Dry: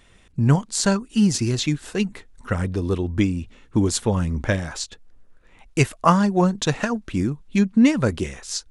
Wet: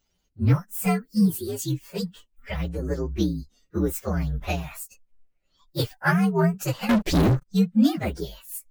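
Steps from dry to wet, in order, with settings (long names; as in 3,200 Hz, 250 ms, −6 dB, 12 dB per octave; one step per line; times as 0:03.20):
partials spread apart or drawn together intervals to 123%
0:06.89–0:07.46: leveller curve on the samples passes 5
noise reduction from a noise print of the clip's start 13 dB
level −1.5 dB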